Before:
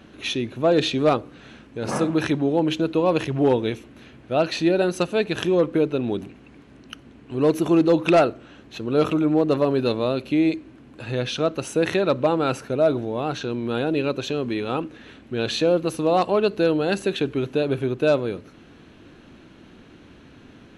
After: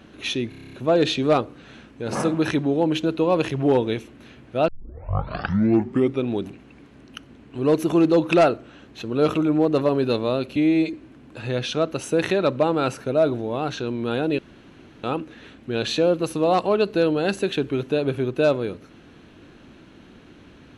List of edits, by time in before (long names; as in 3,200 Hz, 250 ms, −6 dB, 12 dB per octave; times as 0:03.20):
0:00.49: stutter 0.03 s, 9 plays
0:04.44: tape start 1.61 s
0:10.32–0:10.57: time-stretch 1.5×
0:14.02–0:14.67: fill with room tone